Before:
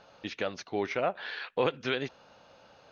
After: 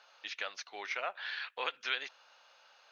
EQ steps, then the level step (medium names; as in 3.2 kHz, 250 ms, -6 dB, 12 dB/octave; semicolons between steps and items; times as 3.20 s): high-pass 1.2 kHz 12 dB/octave; 0.0 dB